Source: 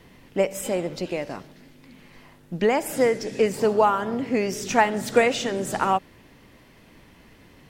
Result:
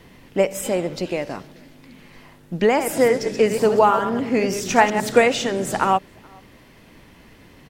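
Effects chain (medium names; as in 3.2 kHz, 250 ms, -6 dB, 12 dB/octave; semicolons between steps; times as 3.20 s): 2.68–5.12 s: chunks repeated in reverse 101 ms, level -8 dB; echo from a far wall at 73 m, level -29 dB; trim +3.5 dB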